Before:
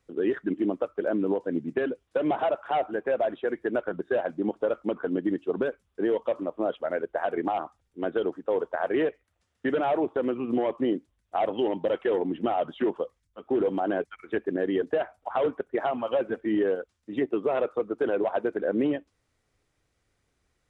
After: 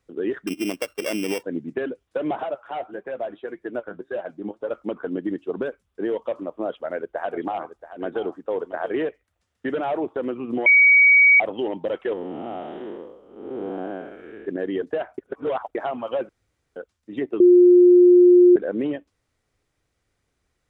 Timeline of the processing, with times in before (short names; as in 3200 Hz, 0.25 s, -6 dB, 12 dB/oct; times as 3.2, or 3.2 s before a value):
0.47–1.43 sample sorter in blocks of 16 samples
2.43–4.71 flange 1.7 Hz, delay 4.9 ms, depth 5.5 ms, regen +47%
6.65–9.04 echo 0.678 s -13 dB
10.66–11.4 bleep 2260 Hz -10 dBFS
12.13–14.47 time blur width 0.285 s
15.18–15.75 reverse
16.29–16.76 room tone
17.4–18.56 bleep 356 Hz -8.5 dBFS